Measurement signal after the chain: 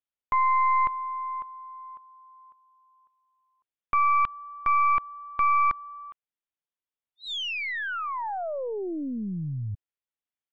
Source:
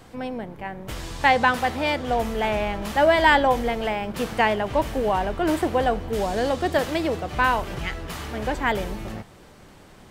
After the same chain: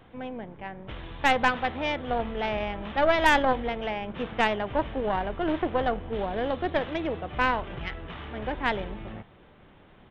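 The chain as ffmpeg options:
-af "aresample=8000,aresample=44100,aeval=exprs='0.631*(cos(1*acos(clip(val(0)/0.631,-1,1)))-cos(1*PI/2))+0.126*(cos(2*acos(clip(val(0)/0.631,-1,1)))-cos(2*PI/2))+0.0141*(cos(3*acos(clip(val(0)/0.631,-1,1)))-cos(3*PI/2))+0.0794*(cos(6*acos(clip(val(0)/0.631,-1,1)))-cos(6*PI/2))+0.0316*(cos(8*acos(clip(val(0)/0.631,-1,1)))-cos(8*PI/2))':c=same,volume=-5dB"

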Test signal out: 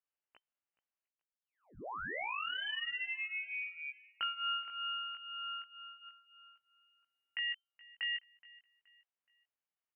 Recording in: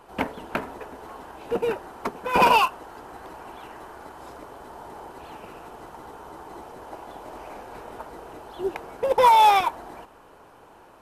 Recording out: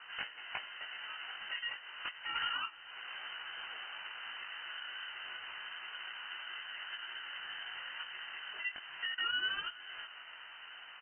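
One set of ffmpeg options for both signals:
-af "highpass=f=270:p=1,acompressor=threshold=-43dB:ratio=3,flanger=delay=16.5:depth=4.1:speed=0.29,aeval=exprs='val(0)*sin(2*PI*730*n/s)':c=same,aecho=1:1:423|846|1269:0.0794|0.0294|0.0109,lowpass=f=2.6k:t=q:w=0.5098,lowpass=f=2.6k:t=q:w=0.6013,lowpass=f=2.6k:t=q:w=0.9,lowpass=f=2.6k:t=q:w=2.563,afreqshift=-3100,volume=6.5dB"

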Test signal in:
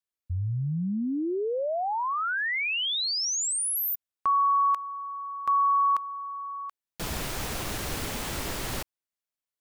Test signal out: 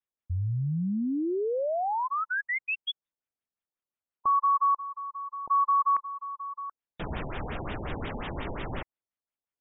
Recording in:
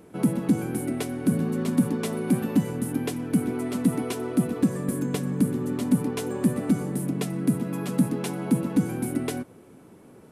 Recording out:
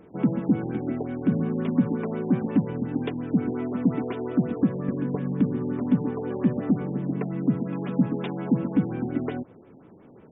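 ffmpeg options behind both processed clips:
-af "afftfilt=real='re*lt(b*sr/1024,900*pow(3800/900,0.5+0.5*sin(2*PI*5.6*pts/sr)))':imag='im*lt(b*sr/1024,900*pow(3800/900,0.5+0.5*sin(2*PI*5.6*pts/sr)))':win_size=1024:overlap=0.75"

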